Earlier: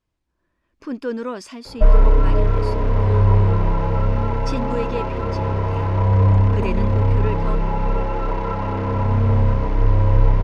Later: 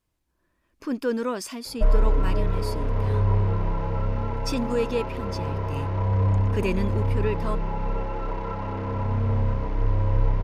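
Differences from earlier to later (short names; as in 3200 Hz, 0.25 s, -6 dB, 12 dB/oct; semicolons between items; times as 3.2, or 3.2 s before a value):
speech: remove air absorption 66 m; background -7.0 dB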